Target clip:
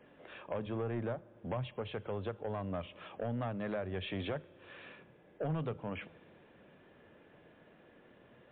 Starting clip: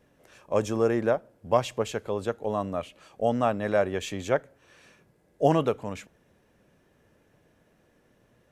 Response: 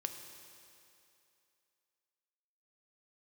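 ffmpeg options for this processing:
-filter_complex "[0:a]lowshelf=frequency=76:gain=-10.5,acrossover=split=160[link_01][link_02];[link_01]flanger=delay=19.5:depth=6.3:speed=0.45[link_03];[link_02]acompressor=threshold=-38dB:ratio=12[link_04];[link_03][link_04]amix=inputs=2:normalize=0,asoftclip=type=tanh:threshold=-34dB,asplit=2[link_05][link_06];[1:a]atrim=start_sample=2205[link_07];[link_06][link_07]afir=irnorm=-1:irlink=0,volume=-12.5dB[link_08];[link_05][link_08]amix=inputs=2:normalize=0,volume=3.5dB" -ar 8000 -c:a libmp3lame -b:a 64k

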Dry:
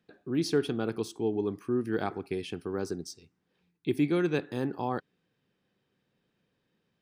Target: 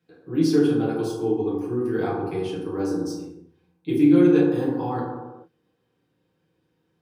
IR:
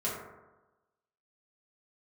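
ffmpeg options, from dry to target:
-filter_complex "[0:a]highshelf=frequency=10000:gain=4.5[link_01];[1:a]atrim=start_sample=2205,afade=type=out:start_time=0.41:duration=0.01,atrim=end_sample=18522,asetrate=32634,aresample=44100[link_02];[link_01][link_02]afir=irnorm=-1:irlink=0,volume=-3.5dB"

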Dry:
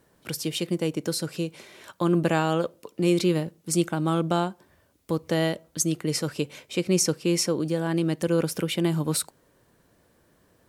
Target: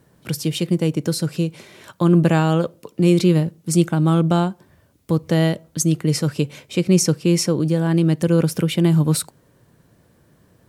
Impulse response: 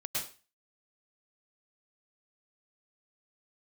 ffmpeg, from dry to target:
-af "equalizer=frequency=130:width_type=o:width=1.6:gain=9.5,volume=3dB"

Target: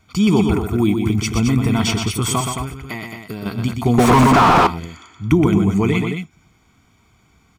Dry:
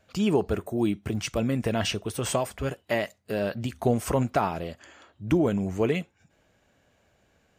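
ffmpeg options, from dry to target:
ffmpeg -i in.wav -filter_complex "[0:a]bandreject=frequency=840:width=14,aecho=1:1:0.9:0.97,asettb=1/sr,asplit=3[link_01][link_02][link_03];[link_01]atrim=end=2.404[link_04];[link_02]atrim=start=2.4:end=3.46,asetpts=PTS-STARTPTS,afade=type=in:duration=0.004:curve=qsin,afade=type=out:start_time=1.056:duration=0.004:curve=qsin,acompressor=threshold=-32dB:ratio=4[link_05];[link_03]atrim=start=3.456[link_06];[link_04][link_05]acrossfade=duration=0.004:curve1=hsin:curve2=qsin[link_07];[link_07][link_06]acrossfade=duration=0.004:curve1=qsin:curve2=hsin,asplit=2[link_08][link_09];[link_09]aecho=0:1:122.4|218.7:0.501|0.447[link_10];[link_08][link_10]amix=inputs=2:normalize=0,asettb=1/sr,asplit=3[link_11][link_12][link_13];[link_11]atrim=end=3.984[link_14];[link_12]atrim=start=3.98:end=4.67,asetpts=PTS-STARTPTS,afade=type=in:duration=0.004:curve=qsin,afade=type=out:start_time=0.686:duration=0.004:curve=qsin,asplit=2[link_15][link_16];[link_16]highpass=frequency=720:poles=1,volume=37dB,asoftclip=type=tanh:threshold=-8.5dB[link_17];[link_15][link_17]amix=inputs=2:normalize=0,lowpass=frequency=1200:poles=1,volume=-6dB[link_18];[link_13]atrim=start=4.666[link_19];[link_14][link_18]acrossfade=duration=0.004:curve1=hsin:curve2=qsin[link_20];[link_20][link_19]acrossfade=duration=0.004:curve1=qsin:curve2=hsin,volume=5.5dB" out.wav

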